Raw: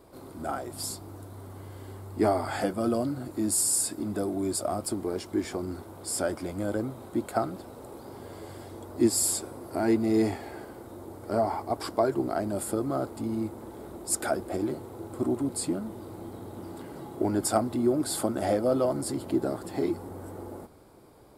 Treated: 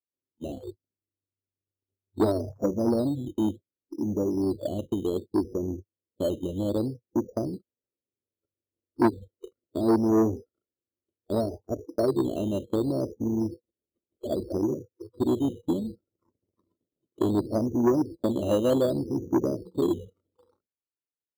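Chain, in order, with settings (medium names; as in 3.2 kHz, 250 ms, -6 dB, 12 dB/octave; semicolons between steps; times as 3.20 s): steep low-pass 610 Hz 72 dB/octave; gate -38 dBFS, range -29 dB; spectral noise reduction 28 dB; in parallel at -4 dB: decimation with a swept rate 10×, swing 60% 0.66 Hz; on the sum: transformer saturation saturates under 600 Hz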